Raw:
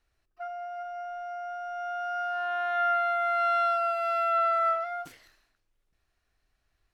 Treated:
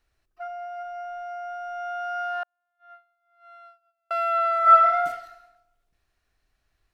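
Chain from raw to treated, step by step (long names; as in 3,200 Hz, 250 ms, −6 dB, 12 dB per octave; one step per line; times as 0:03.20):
0:02.43–0:04.11: noise gate −21 dBFS, range −52 dB
0:04.62–0:05.03: thrown reverb, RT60 0.93 s, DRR −7 dB
level +2 dB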